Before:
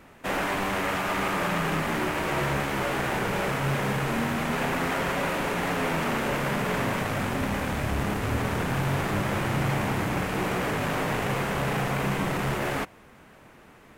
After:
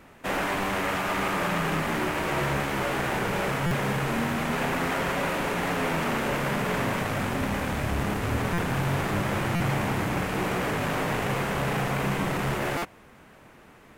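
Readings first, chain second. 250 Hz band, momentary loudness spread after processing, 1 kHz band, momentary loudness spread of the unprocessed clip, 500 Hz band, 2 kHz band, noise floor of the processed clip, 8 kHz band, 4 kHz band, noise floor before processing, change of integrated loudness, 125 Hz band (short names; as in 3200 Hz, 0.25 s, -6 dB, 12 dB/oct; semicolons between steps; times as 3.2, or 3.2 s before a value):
0.0 dB, 2 LU, 0.0 dB, 2 LU, 0.0 dB, 0.0 dB, -52 dBFS, 0.0 dB, 0.0 dB, -52 dBFS, 0.0 dB, 0.0 dB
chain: stuck buffer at 3.66/8.53/9.55/12.77, samples 256, times 8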